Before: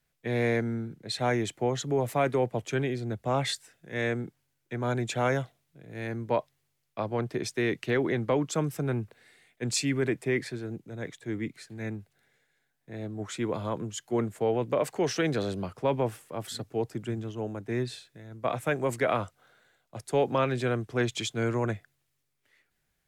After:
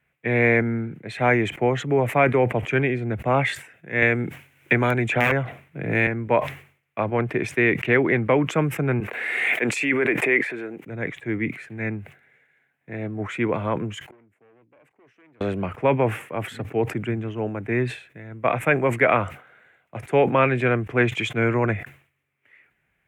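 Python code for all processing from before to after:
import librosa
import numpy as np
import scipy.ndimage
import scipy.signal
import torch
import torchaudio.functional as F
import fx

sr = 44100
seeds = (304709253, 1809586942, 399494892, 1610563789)

y = fx.chain(x, sr, fx.overflow_wrap(gain_db=18.0),
    fx.band_squash(depth_pct=100), at=(4.02, 6.07))
y = fx.chain(y, sr, fx.highpass(hz=350.0, slope=12),
    fx.pre_swell(db_per_s=24.0), at=(9.0, 10.86))
y = fx.chain(y, sr, fx.peak_eq(hz=300.0, db=7.0, octaves=0.59),
    fx.overload_stage(gain_db=25.0),
    fx.gate_flip(shuts_db=-44.0, range_db=-35), at=(14.08, 15.41))
y = scipy.signal.sosfilt(scipy.signal.butter(2, 58.0, 'highpass', fs=sr, output='sos'), y)
y = fx.high_shelf_res(y, sr, hz=3300.0, db=-12.0, q=3.0)
y = fx.sustainer(y, sr, db_per_s=130.0)
y = y * librosa.db_to_amplitude(6.5)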